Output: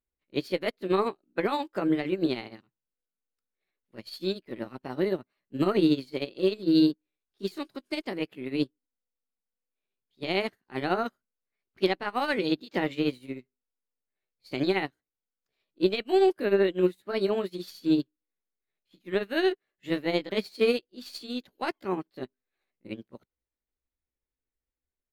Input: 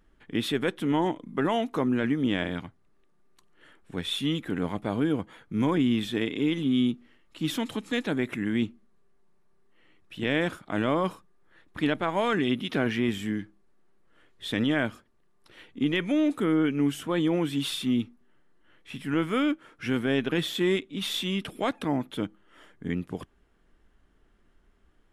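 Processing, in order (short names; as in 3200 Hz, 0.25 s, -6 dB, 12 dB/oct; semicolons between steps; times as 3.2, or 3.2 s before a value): delay-line pitch shifter +4 st; upward expander 2.5:1, over -44 dBFS; gain +5 dB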